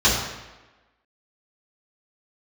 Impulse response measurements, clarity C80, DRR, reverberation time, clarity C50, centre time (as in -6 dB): 5.0 dB, -9.0 dB, 1.1 s, 2.5 dB, 58 ms